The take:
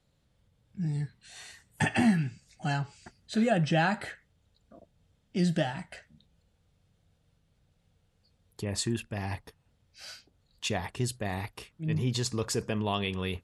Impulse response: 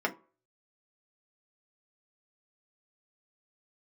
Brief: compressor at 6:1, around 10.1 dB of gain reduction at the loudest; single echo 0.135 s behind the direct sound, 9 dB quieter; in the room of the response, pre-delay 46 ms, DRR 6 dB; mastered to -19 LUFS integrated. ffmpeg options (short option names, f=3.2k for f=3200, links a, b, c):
-filter_complex "[0:a]acompressor=threshold=-31dB:ratio=6,aecho=1:1:135:0.355,asplit=2[a][b];[1:a]atrim=start_sample=2205,adelay=46[c];[b][c]afir=irnorm=-1:irlink=0,volume=-15dB[d];[a][d]amix=inputs=2:normalize=0,volume=17dB"